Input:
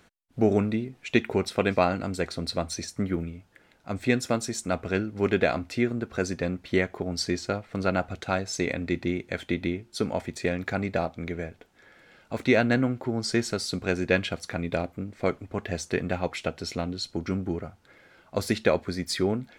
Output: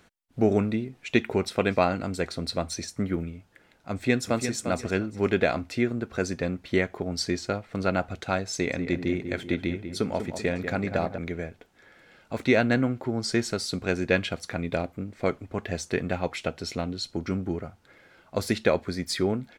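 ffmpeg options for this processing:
ffmpeg -i in.wav -filter_complex "[0:a]asplit=2[link_01][link_02];[link_02]afade=type=in:start_time=3.92:duration=0.01,afade=type=out:start_time=4.55:duration=0.01,aecho=0:1:350|700|1050:0.398107|0.0796214|0.0159243[link_03];[link_01][link_03]amix=inputs=2:normalize=0,asettb=1/sr,asplit=3[link_04][link_05][link_06];[link_04]atrim=end=8.534[link_07];[link_05]atrim=start=8.53:end=11.18,asetpts=PTS-STARTPTS,afade=type=in:duration=0.004:curve=qsin,afade=type=out:start_time=2.646:duration=0.004:curve=qsin,asplit=2[link_08][link_09];[link_09]adelay=193,lowpass=frequency=1600:poles=1,volume=-8dB,asplit=2[link_10][link_11];[link_11]adelay=193,lowpass=frequency=1600:poles=1,volume=0.51,asplit=2[link_12][link_13];[link_13]adelay=193,lowpass=frequency=1600:poles=1,volume=0.51,asplit=2[link_14][link_15];[link_15]adelay=193,lowpass=frequency=1600:poles=1,volume=0.51,asplit=2[link_16][link_17];[link_17]adelay=193,lowpass=frequency=1600:poles=1,volume=0.51,asplit=2[link_18][link_19];[link_19]adelay=193,lowpass=frequency=1600:poles=1,volume=0.51[link_20];[link_08][link_10][link_12][link_14][link_16][link_18][link_20]amix=inputs=7:normalize=0,atrim=end_sample=116865[link_21];[link_06]atrim=start=11.176[link_22];[link_07][link_21]acrossfade=duration=0.004:curve1=hsin:curve2=qsin[link_23];[link_23][link_22]acrossfade=duration=0.004:curve1=qsin:curve2=hsin" out.wav

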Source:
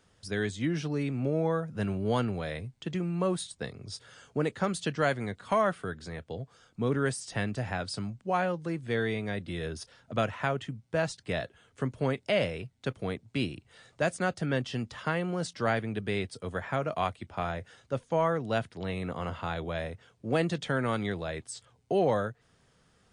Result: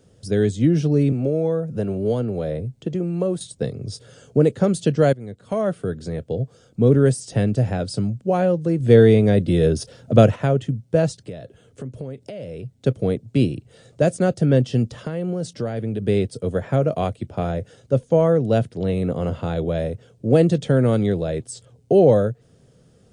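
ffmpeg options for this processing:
ffmpeg -i in.wav -filter_complex "[0:a]asettb=1/sr,asplit=3[link_01][link_02][link_03];[link_01]atrim=end=1.124[link_04];[link_02]atrim=start=1.12:end=3.41,asetpts=PTS-STARTPTS,afade=type=in:duration=0.004:curve=qsin,afade=type=out:start_time=2.286:duration=0.004:curve=qsin,acrossover=split=310|1400[link_05][link_06][link_07];[link_05]acompressor=threshold=-40dB:ratio=4[link_08];[link_06]acompressor=threshold=-33dB:ratio=4[link_09];[link_07]acompressor=threshold=-49dB:ratio=4[link_10];[link_08][link_09][link_10]amix=inputs=3:normalize=0[link_11];[link_03]atrim=start=3.406[link_12];[link_04][link_11]acrossfade=duration=0.004:curve1=hsin:curve2=qsin[link_13];[link_13][link_12]acrossfade=duration=0.004:curve1=qsin:curve2=hsin,asettb=1/sr,asplit=3[link_14][link_15][link_16];[link_14]atrim=end=8.804[link_17];[link_15]atrim=start=8.8:end=10.36,asetpts=PTS-STARTPTS,afade=type=in:duration=0.004:curve=qsin,afade=type=out:start_time=1.556:duration=0.004:curve=qsin,acontrast=42[link_18];[link_16]atrim=start=10.356[link_19];[link_17][link_18]acrossfade=duration=0.004:curve1=hsin:curve2=qsin[link_20];[link_20][link_19]acrossfade=duration=0.004:curve1=qsin:curve2=hsin,asettb=1/sr,asplit=3[link_21][link_22][link_23];[link_21]atrim=end=11.264[link_24];[link_22]atrim=start=11.26:end=12.74,asetpts=PTS-STARTPTS,afade=type=in:duration=0.004:curve=qsin,afade=type=out:start_time=1.476:duration=0.004:curve=qsin,acompressor=threshold=-42dB:ratio=6:attack=3.2:release=140:knee=1:detection=peak[link_25];[link_23]atrim=start=12.736[link_26];[link_24][link_25]acrossfade=duration=0.004:curve1=hsin:curve2=qsin[link_27];[link_27][link_26]acrossfade=duration=0.004:curve1=qsin:curve2=hsin,asettb=1/sr,asplit=3[link_28][link_29][link_30];[link_28]atrim=end=14.934[link_31];[link_29]atrim=start=14.93:end=16.02,asetpts=PTS-STARTPTS,afade=type=in:duration=0.004:curve=qsin,afade=type=out:start_time=1.086:duration=0.004:curve=qsin,acompressor=threshold=-35dB:ratio=3:attack=3.2:release=140:knee=1:detection=peak[link_32];[link_30]atrim=start=16.016[link_33];[link_31][link_32]acrossfade=duration=0.004:curve1=hsin:curve2=qsin[link_34];[link_34][link_33]acrossfade=duration=0.004:curve1=qsin:curve2=hsin,asplit=2[link_35][link_36];[link_35]atrim=end=5.13,asetpts=PTS-STARTPTS,afade=type=out:start_time=5.126:duration=0.004:curve=hsin:silence=0.11885[link_37];[link_36]atrim=start=5.13,asetpts=PTS-STARTPTS,afade=type=in:duration=0.9:silence=0.11885[link_38];[link_37][link_38]concat=n=2:v=0:a=1,equalizer=frequency=125:width_type=o:width=1:gain=8,equalizer=frequency=250:width_type=o:width=1:gain=3,equalizer=frequency=500:width_type=o:width=1:gain=8,equalizer=frequency=1000:width_type=o:width=1:gain=-9,equalizer=frequency=2000:width_type=o:width=1:gain=-7,equalizer=frequency=4000:width_type=o:width=1:gain=-3,volume=7dB" out.wav

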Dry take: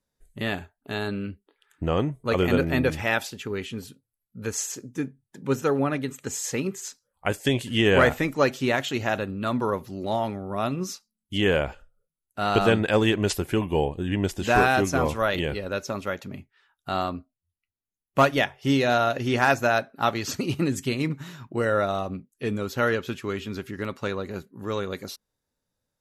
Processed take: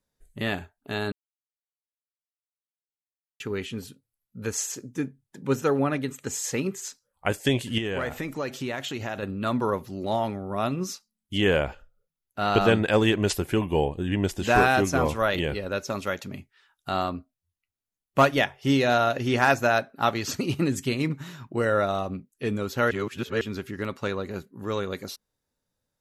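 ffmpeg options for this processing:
ffmpeg -i in.wav -filter_complex "[0:a]asettb=1/sr,asplit=3[link_01][link_02][link_03];[link_01]atrim=end=7.784[link_04];[link_02]atrim=start=7.78:end=9.23,asetpts=PTS-STARTPTS,afade=type=in:duration=0.004:curve=qsin,afade=type=out:start_time=1.446:duration=0.004:curve=qsin,acompressor=threshold=-29dB:ratio=3:attack=3.2:release=140:knee=1:detection=peak[link_05];[link_03]atrim=start=9.226[link_06];[link_04][link_05]acrossfade=duration=0.004:curve1=hsin:curve2=qsin[link_07];[link_07][link_06]acrossfade=duration=0.004:curve1=qsin:curve2=hsin,asettb=1/sr,asplit=3[link_08][link_09][link_10];[link_08]atrim=end=11.684[link_11];[link_09]atrim=start=11.68:end=12.69,asetpts=PTS-STARTPTS,afade=type=in:duration=0.004:curve=qsin,afade=type=out:start_time=1.006:duration=0.004:curve=qsin,equalizer=frequency=8900:width=3.3:gain=-12[link_12];[link_10]atrim=start=12.686[link_13];[link_11][link_12]acrossfade=duration=0.004:curve1=hsin:curve2=qsin[link_14];[link_14][link_13]acrossfade=duration=0.004:curve1=qsin:curve2=hsin,asettb=1/sr,asplit=3[link_15][link_16][link_17];[link_15]atrim=end=15.904[link_18];[link_16]atrim=start=15.9:end=16.9,asetpts=PTS-STARTPTS,afade=type=in:duration=0.004:curve=qsin,afade=type=out:start_time=0.996:duration=0.004:curve=qsin,equalizer=frequency=7200:width=0.41:gain=6[link_19];[link_17]atrim=start=16.896[link_20];[link_18][link_19]acrossfade=duration=0.004:curve1=hsin:curve2=qsin[link_21];[link_21][link_20]acrossfade=duration=0.004:curve1=qsin:curve2=hsin,asplit=5[link_22][link_23][link_24][link_25][link_26];[link_22]atrim=end=1.12,asetpts=PTS-STARTPTS,afade=type=out:start_time=1.116:duration=0.004:curve=hsin[link_27];[link_23]atrim=start=1.12:end=3.4,asetpts=PTS-STARTPTS,volume=0[link_28];[link_24]atrim=start=3.4:end=22.912,asetpts=PTS-STARTPTS,afade=type=in:duration=0.004:curve=hsin[link_29];[link_25]atrim=start=22.908:end=23.412,asetpts=PTS-STARTPTS,areverse[link_30];[link_26]atrim=start=23.408[link_31];[link_27][link_28][link_29]concat=n=3:v=0:a=1[link_32];[link_32][link_30]acrossfade=duration=0.004:curve1=hsin:curve2=hsin[link_33];[link_33][link_31]acrossfade=duration=0.004:curve1=hsin:curve2=hsin" out.wav

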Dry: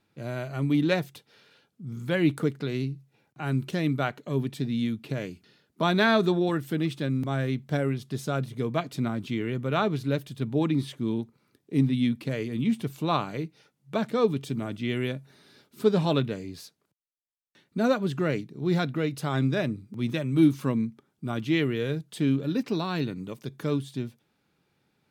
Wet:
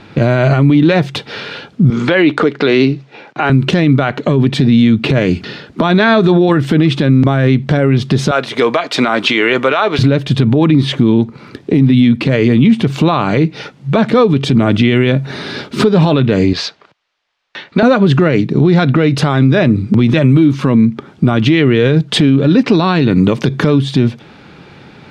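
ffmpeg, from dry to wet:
ffmpeg -i in.wav -filter_complex "[0:a]asettb=1/sr,asplit=3[link_01][link_02][link_03];[link_01]atrim=end=1.904[link_04];[link_02]atrim=start=1.9:end=3.5,asetpts=PTS-STARTPTS,afade=type=in:duration=0.004:curve=qsin,afade=type=out:start_time=1.596:duration=0.004:curve=qsin,highpass=350,lowpass=6000[link_05];[link_03]atrim=start=3.496[link_06];[link_04][link_05]acrossfade=duration=0.004:curve1=hsin:curve2=qsin[link_07];[link_07][link_06]acrossfade=duration=0.004:curve1=qsin:curve2=hsin,asettb=1/sr,asplit=3[link_08][link_09][link_10];[link_08]atrim=end=8.314[link_11];[link_09]atrim=start=8.31:end=9.99,asetpts=PTS-STARTPTS,afade=type=in:duration=0.004:curve=qsin,afade=type=out:start_time=1.676:duration=0.004:curve=qsin,highpass=640[link_12];[link_10]atrim=start=9.986[link_13];[link_11][link_12]acrossfade=duration=0.004:curve1=hsin:curve2=qsin[link_14];[link_14][link_13]acrossfade=duration=0.004:curve1=qsin:curve2=hsin,asettb=1/sr,asplit=3[link_15][link_16][link_17];[link_15]atrim=end=16.534[link_18];[link_16]atrim=start=16.53:end=17.83,asetpts=PTS-STARTPTS,afade=type=in:duration=0.004:curve=qsin,afade=type=out:start_time=1.296:duration=0.004:curve=qsin,acrossover=split=510 6300:gain=0.2 1 0.0708[link_19][link_20][link_21];[link_19][link_20][link_21]amix=inputs=3:normalize=0[link_22];[link_17]atrim=start=17.826[link_23];[link_18][link_22]acrossfade=duration=0.004:curve1=hsin:curve2=qsin[link_24];[link_24][link_23]acrossfade=duration=0.004:curve1=qsin:curve2=hsin,lowpass=3900,acompressor=threshold=-37dB:ratio=5,alimiter=level_in=35dB:limit=-1dB:release=50:level=0:latency=1,volume=-1dB" out.wav

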